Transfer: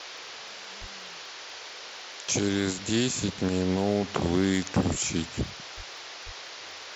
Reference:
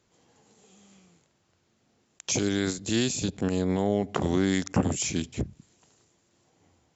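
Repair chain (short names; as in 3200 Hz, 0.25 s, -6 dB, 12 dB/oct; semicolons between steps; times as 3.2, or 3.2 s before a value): clip repair -15 dBFS; de-click; de-plosive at 0.8/4.9/5.76/6.25; noise print and reduce 27 dB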